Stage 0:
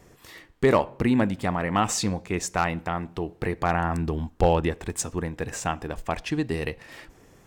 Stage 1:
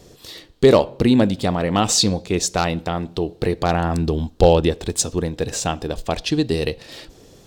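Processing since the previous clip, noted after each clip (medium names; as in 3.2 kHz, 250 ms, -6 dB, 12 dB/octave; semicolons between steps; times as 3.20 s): graphic EQ 500/1000/2000/4000 Hz +4/-5/-8/+11 dB; trim +6 dB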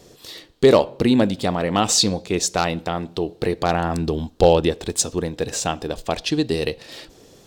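bass shelf 130 Hz -7.5 dB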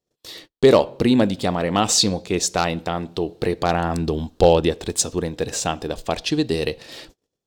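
gate -43 dBFS, range -36 dB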